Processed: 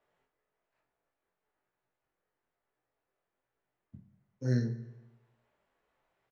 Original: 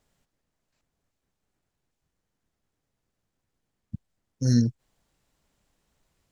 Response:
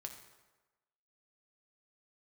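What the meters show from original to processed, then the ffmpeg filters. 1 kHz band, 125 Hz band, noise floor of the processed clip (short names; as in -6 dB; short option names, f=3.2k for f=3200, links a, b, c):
n/a, -7.0 dB, under -85 dBFS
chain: -filter_complex "[0:a]acrossover=split=370 2700:gain=0.141 1 0.126[a][b][c];[a][b][c]amix=inputs=3:normalize=0,flanger=delay=16:depth=5.4:speed=1.1,aecho=1:1:23|49:0.422|0.299,asplit=2[d][e];[1:a]atrim=start_sample=2205,highshelf=f=5.3k:g=-10.5[f];[e][f]afir=irnorm=-1:irlink=0,volume=7.5dB[g];[d][g]amix=inputs=2:normalize=0,volume=-4dB"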